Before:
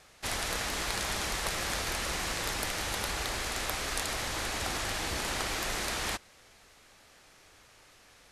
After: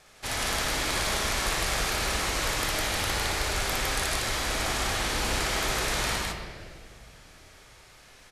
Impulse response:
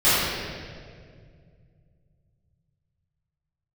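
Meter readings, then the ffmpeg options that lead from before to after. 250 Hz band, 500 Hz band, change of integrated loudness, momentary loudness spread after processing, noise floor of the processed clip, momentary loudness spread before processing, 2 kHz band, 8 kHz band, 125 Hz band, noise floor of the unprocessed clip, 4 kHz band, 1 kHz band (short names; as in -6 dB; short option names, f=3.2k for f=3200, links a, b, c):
+5.0 dB, +5.5 dB, +5.0 dB, 4 LU, -53 dBFS, 1 LU, +5.0 dB, +4.5 dB, +6.5 dB, -59 dBFS, +5.0 dB, +5.0 dB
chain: -filter_complex "[0:a]aecho=1:1:58.31|157.4:0.708|0.891,asplit=2[a][b];[1:a]atrim=start_sample=2205[c];[b][c]afir=irnorm=-1:irlink=0,volume=-25.5dB[d];[a][d]amix=inputs=2:normalize=0"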